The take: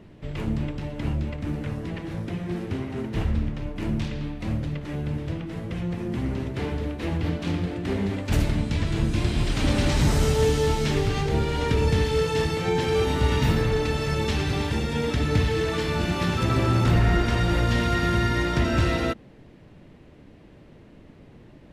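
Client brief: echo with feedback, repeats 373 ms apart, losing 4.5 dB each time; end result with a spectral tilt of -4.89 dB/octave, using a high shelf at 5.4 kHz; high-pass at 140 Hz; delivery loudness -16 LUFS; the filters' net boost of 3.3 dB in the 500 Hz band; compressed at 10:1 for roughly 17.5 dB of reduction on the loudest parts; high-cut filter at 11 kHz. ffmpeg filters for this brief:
-af "highpass=140,lowpass=11000,equalizer=f=500:t=o:g=4,highshelf=f=5400:g=5.5,acompressor=threshold=0.0178:ratio=10,aecho=1:1:373|746|1119|1492|1865|2238|2611|2984|3357:0.596|0.357|0.214|0.129|0.0772|0.0463|0.0278|0.0167|0.01,volume=11.2"

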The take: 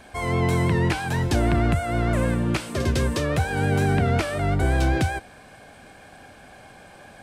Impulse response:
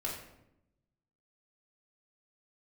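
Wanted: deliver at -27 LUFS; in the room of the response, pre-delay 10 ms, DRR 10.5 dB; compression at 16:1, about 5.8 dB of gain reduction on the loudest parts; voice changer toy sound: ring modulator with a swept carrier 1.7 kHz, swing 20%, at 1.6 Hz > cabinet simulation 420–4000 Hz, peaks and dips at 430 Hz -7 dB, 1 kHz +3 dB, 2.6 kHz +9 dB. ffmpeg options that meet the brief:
-filter_complex "[0:a]acompressor=threshold=0.0794:ratio=16,asplit=2[s0][s1];[1:a]atrim=start_sample=2205,adelay=10[s2];[s1][s2]afir=irnorm=-1:irlink=0,volume=0.224[s3];[s0][s3]amix=inputs=2:normalize=0,aeval=exprs='val(0)*sin(2*PI*1700*n/s+1700*0.2/1.6*sin(2*PI*1.6*n/s))':c=same,highpass=420,equalizer=f=430:t=q:w=4:g=-7,equalizer=f=1000:t=q:w=4:g=3,equalizer=f=2600:t=q:w=4:g=9,lowpass=f=4000:w=0.5412,lowpass=f=4000:w=1.3066,volume=0.75"

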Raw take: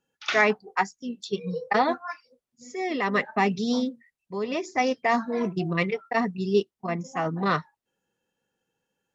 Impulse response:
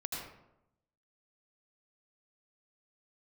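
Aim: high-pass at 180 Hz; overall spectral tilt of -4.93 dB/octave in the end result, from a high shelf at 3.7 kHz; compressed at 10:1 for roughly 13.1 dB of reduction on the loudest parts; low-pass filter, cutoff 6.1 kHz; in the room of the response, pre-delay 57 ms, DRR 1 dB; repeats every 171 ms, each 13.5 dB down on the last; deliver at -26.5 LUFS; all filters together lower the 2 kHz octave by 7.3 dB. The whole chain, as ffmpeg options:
-filter_complex "[0:a]highpass=180,lowpass=6100,equalizer=f=2000:t=o:g=-6.5,highshelf=f=3700:g=-8,acompressor=threshold=0.0282:ratio=10,aecho=1:1:171|342:0.211|0.0444,asplit=2[s0][s1];[1:a]atrim=start_sample=2205,adelay=57[s2];[s1][s2]afir=irnorm=-1:irlink=0,volume=0.75[s3];[s0][s3]amix=inputs=2:normalize=0,volume=2.37"

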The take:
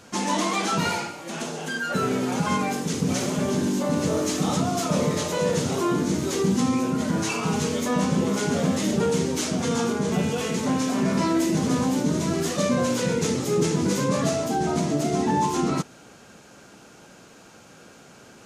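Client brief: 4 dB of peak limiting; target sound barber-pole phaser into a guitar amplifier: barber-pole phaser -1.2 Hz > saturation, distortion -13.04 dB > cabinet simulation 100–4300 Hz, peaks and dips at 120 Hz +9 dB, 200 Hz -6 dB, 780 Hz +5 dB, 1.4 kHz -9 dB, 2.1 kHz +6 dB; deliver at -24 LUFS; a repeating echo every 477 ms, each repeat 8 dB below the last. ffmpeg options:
-filter_complex "[0:a]alimiter=limit=0.158:level=0:latency=1,aecho=1:1:477|954|1431|1908|2385:0.398|0.159|0.0637|0.0255|0.0102,asplit=2[s0][s1];[s1]afreqshift=-1.2[s2];[s0][s2]amix=inputs=2:normalize=1,asoftclip=threshold=0.0562,highpass=100,equalizer=f=120:t=q:w=4:g=9,equalizer=f=200:t=q:w=4:g=-6,equalizer=f=780:t=q:w=4:g=5,equalizer=f=1400:t=q:w=4:g=-9,equalizer=f=2100:t=q:w=4:g=6,lowpass=f=4300:w=0.5412,lowpass=f=4300:w=1.3066,volume=2.37"

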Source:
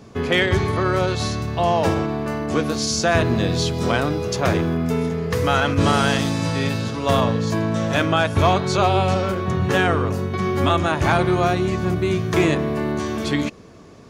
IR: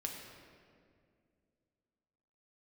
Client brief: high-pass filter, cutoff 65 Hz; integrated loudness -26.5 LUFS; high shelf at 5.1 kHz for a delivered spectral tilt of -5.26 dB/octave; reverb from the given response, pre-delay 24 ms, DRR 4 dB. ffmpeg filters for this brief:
-filter_complex "[0:a]highpass=65,highshelf=f=5100:g=-6,asplit=2[s0][s1];[1:a]atrim=start_sample=2205,adelay=24[s2];[s1][s2]afir=irnorm=-1:irlink=0,volume=0.631[s3];[s0][s3]amix=inputs=2:normalize=0,volume=0.422"

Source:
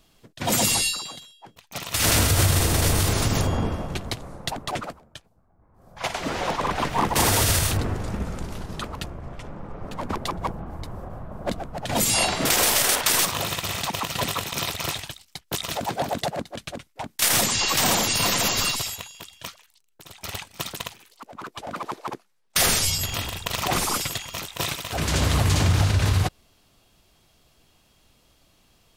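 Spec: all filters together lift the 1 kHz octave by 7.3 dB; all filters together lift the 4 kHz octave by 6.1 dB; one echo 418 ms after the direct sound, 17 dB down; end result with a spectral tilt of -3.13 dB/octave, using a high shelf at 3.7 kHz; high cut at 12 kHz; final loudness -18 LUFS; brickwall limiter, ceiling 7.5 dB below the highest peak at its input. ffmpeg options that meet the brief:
-af "lowpass=12000,equalizer=f=1000:t=o:g=8.5,highshelf=f=3700:g=4,equalizer=f=4000:t=o:g=4.5,alimiter=limit=0.316:level=0:latency=1,aecho=1:1:418:0.141,volume=1.5"

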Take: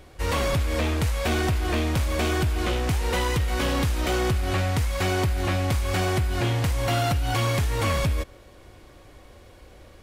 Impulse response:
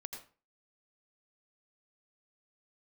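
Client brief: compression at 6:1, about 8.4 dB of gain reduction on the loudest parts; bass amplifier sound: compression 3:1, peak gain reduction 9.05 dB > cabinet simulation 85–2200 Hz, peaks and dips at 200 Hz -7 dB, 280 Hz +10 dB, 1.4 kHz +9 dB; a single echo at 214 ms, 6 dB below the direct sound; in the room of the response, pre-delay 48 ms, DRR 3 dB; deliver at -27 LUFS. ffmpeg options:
-filter_complex "[0:a]acompressor=threshold=0.0316:ratio=6,aecho=1:1:214:0.501,asplit=2[s0][s1];[1:a]atrim=start_sample=2205,adelay=48[s2];[s1][s2]afir=irnorm=-1:irlink=0,volume=0.944[s3];[s0][s3]amix=inputs=2:normalize=0,acompressor=threshold=0.0158:ratio=3,highpass=f=85:w=0.5412,highpass=f=85:w=1.3066,equalizer=f=200:t=q:w=4:g=-7,equalizer=f=280:t=q:w=4:g=10,equalizer=f=1400:t=q:w=4:g=9,lowpass=f=2200:w=0.5412,lowpass=f=2200:w=1.3066,volume=3.76"

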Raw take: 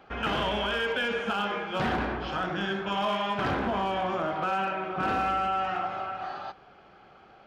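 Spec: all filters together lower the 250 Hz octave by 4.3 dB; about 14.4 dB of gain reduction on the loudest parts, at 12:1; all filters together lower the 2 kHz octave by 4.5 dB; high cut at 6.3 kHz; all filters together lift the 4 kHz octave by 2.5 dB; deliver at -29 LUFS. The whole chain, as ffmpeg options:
-af "lowpass=6300,equalizer=f=250:t=o:g=-6,equalizer=f=2000:t=o:g=-8.5,equalizer=f=4000:t=o:g=8.5,acompressor=threshold=0.00891:ratio=12,volume=5.62"

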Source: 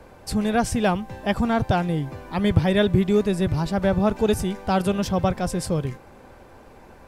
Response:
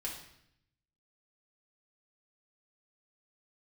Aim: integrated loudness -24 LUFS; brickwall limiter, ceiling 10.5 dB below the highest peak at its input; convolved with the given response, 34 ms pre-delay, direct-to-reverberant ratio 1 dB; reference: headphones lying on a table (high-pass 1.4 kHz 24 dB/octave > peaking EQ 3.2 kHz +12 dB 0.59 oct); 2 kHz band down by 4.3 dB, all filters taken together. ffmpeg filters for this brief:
-filter_complex "[0:a]equalizer=f=2000:t=o:g=-8,alimiter=limit=0.211:level=0:latency=1,asplit=2[s0][s1];[1:a]atrim=start_sample=2205,adelay=34[s2];[s1][s2]afir=irnorm=-1:irlink=0,volume=0.841[s3];[s0][s3]amix=inputs=2:normalize=0,highpass=f=1400:w=0.5412,highpass=f=1400:w=1.3066,equalizer=f=3200:t=o:w=0.59:g=12,volume=2.24"

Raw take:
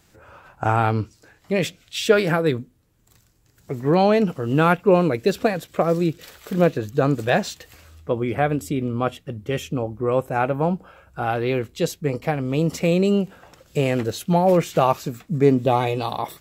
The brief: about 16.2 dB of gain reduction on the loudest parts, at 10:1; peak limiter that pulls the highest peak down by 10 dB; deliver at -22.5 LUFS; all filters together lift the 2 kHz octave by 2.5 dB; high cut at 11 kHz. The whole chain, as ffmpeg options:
-af "lowpass=11000,equalizer=f=2000:t=o:g=3.5,acompressor=threshold=0.0447:ratio=10,volume=3.76,alimiter=limit=0.299:level=0:latency=1"

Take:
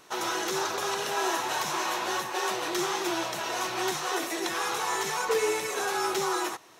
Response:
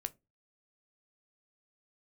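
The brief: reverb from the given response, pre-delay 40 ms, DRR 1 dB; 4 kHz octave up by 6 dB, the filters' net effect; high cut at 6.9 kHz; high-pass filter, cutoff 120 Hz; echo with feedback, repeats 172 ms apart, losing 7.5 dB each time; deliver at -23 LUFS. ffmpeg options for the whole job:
-filter_complex "[0:a]highpass=120,lowpass=6900,equalizer=f=4000:t=o:g=8,aecho=1:1:172|344|516|688|860:0.422|0.177|0.0744|0.0312|0.0131,asplit=2[s0][s1];[1:a]atrim=start_sample=2205,adelay=40[s2];[s1][s2]afir=irnorm=-1:irlink=0,volume=1.06[s3];[s0][s3]amix=inputs=2:normalize=0,volume=1.06"

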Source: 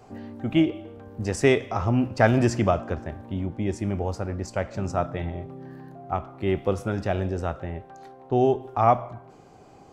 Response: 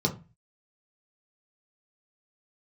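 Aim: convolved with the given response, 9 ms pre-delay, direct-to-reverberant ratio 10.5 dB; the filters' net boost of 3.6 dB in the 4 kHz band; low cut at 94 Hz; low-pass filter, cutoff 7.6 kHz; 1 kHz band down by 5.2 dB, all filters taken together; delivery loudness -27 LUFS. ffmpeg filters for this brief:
-filter_complex "[0:a]highpass=94,lowpass=7600,equalizer=f=1000:t=o:g=-8.5,equalizer=f=4000:t=o:g=6,asplit=2[s0][s1];[1:a]atrim=start_sample=2205,adelay=9[s2];[s1][s2]afir=irnorm=-1:irlink=0,volume=0.106[s3];[s0][s3]amix=inputs=2:normalize=0,volume=0.794"

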